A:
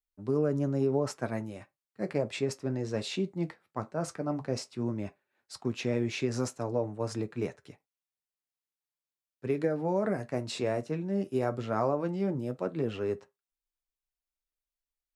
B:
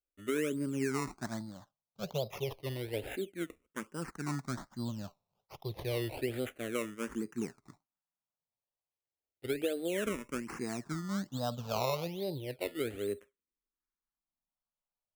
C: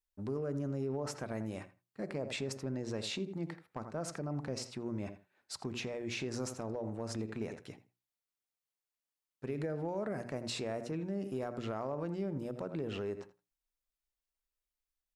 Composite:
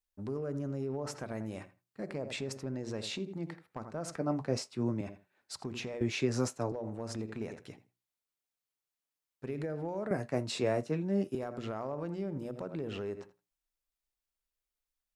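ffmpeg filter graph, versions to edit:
-filter_complex "[0:a]asplit=3[a][b][c];[2:a]asplit=4[d][e][f][g];[d]atrim=end=4.162[h];[a]atrim=start=4.158:end=5.012[i];[e]atrim=start=5.008:end=6.012[j];[b]atrim=start=6.008:end=6.722[k];[f]atrim=start=6.718:end=10.112[l];[c]atrim=start=10.108:end=11.352[m];[g]atrim=start=11.348[n];[h][i]acrossfade=d=0.004:c1=hsin:c2=hsin[o];[o][j]acrossfade=d=0.004:c1=hsin:c2=hsin[p];[p][k]acrossfade=d=0.004:c1=hsin:c2=hsin[q];[q][l]acrossfade=d=0.004:c1=hsin:c2=hsin[r];[r][m]acrossfade=d=0.004:c1=hsin:c2=hsin[s];[s][n]acrossfade=d=0.004:c1=hsin:c2=hsin"

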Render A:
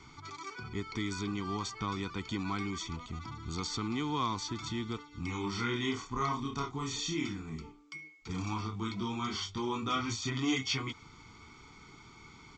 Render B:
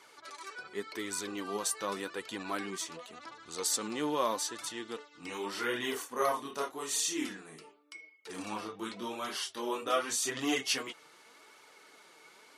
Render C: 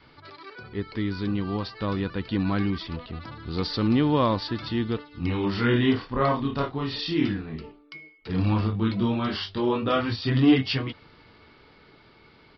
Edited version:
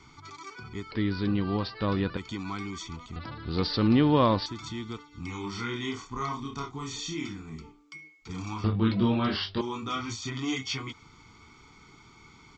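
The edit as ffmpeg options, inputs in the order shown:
-filter_complex "[2:a]asplit=3[a][b][c];[0:a]asplit=4[d][e][f][g];[d]atrim=end=0.912[h];[a]atrim=start=0.908:end=2.172[i];[e]atrim=start=2.168:end=3.162[j];[b]atrim=start=3.158:end=4.462[k];[f]atrim=start=4.458:end=8.642[l];[c]atrim=start=8.638:end=9.612[m];[g]atrim=start=9.608[n];[h][i]acrossfade=d=0.004:c1=hsin:c2=hsin[o];[o][j]acrossfade=d=0.004:c1=hsin:c2=hsin[p];[p][k]acrossfade=d=0.004:c1=hsin:c2=hsin[q];[q][l]acrossfade=d=0.004:c1=hsin:c2=hsin[r];[r][m]acrossfade=d=0.004:c1=hsin:c2=hsin[s];[s][n]acrossfade=d=0.004:c1=hsin:c2=hsin"

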